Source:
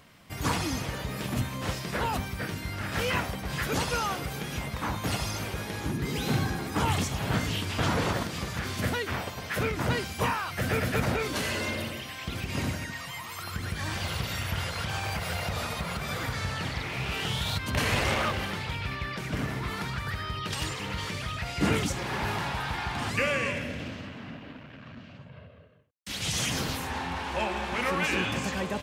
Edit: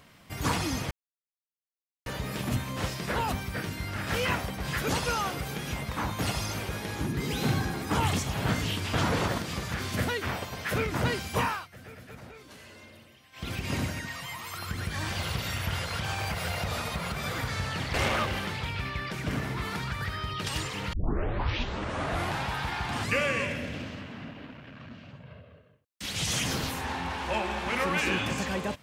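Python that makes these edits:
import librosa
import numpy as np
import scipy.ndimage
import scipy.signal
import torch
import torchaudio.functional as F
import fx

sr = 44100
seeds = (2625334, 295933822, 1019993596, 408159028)

y = fx.edit(x, sr, fx.insert_silence(at_s=0.91, length_s=1.15),
    fx.fade_down_up(start_s=10.37, length_s=1.96, db=-19.0, fade_s=0.16),
    fx.cut(start_s=16.79, length_s=1.21),
    fx.tape_start(start_s=20.99, length_s=1.54), tone=tone)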